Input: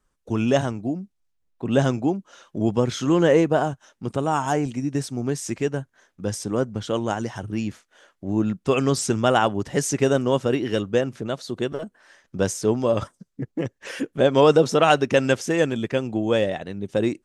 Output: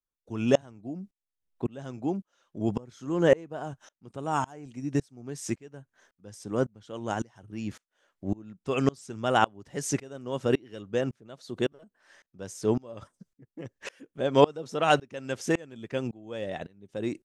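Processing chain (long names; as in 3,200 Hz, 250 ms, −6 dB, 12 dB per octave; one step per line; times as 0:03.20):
0:02.68–0:03.27: dynamic equaliser 2,900 Hz, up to −6 dB, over −45 dBFS, Q 0.91
tremolo with a ramp in dB swelling 1.8 Hz, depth 29 dB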